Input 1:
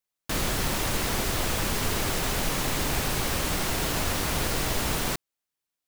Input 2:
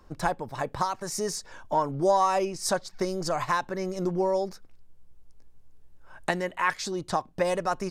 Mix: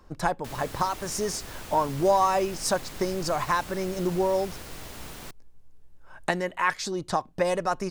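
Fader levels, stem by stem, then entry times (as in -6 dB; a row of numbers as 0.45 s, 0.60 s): -14.0 dB, +1.0 dB; 0.15 s, 0.00 s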